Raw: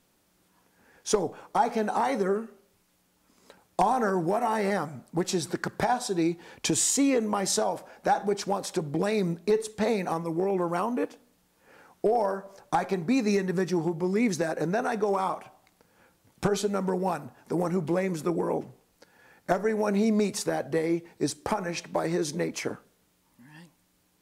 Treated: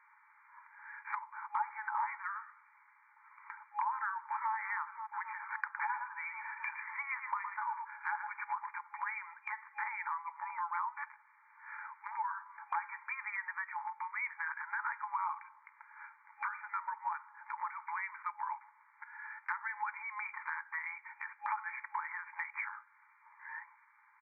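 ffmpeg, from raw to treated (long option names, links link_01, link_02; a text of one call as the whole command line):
ffmpeg -i in.wav -filter_complex "[0:a]asplit=2[link_01][link_02];[link_02]afade=type=in:start_time=4.05:duration=0.01,afade=type=out:start_time=4.52:duration=0.01,aecho=0:1:270|540|810|1080|1350|1620|1890|2160|2430|2700|2970|3240:0.158489|0.126791|0.101433|0.0811465|0.0649172|0.0519338|0.041547|0.0332376|0.0265901|0.0212721|0.0170177|0.0136141[link_03];[link_01][link_03]amix=inputs=2:normalize=0,asettb=1/sr,asplit=3[link_04][link_05][link_06];[link_04]atrim=end=5.604[link_07];[link_05]atrim=start=5.6:end=8.69,asetpts=PTS-STARTPTS,afade=type=in:duration=0.004:curve=qsin,afade=type=out:start_time=3.086:duration=0.004:curve=qsin,aecho=1:1:112:0.376,atrim=end_sample=136269[link_08];[link_06]atrim=start=8.686[link_09];[link_07][link_08]acrossfade=duration=0.004:curve1=hsin:curve2=qsin[link_10];[link_10][link_09]acrossfade=duration=0.004:curve1=qsin:curve2=hsin,afftfilt=real='re*between(b*sr/4096,830,2400)':imag='im*between(b*sr/4096,830,2400)':win_size=4096:overlap=0.75,acompressor=threshold=-55dB:ratio=2.5,volume=12.5dB" out.wav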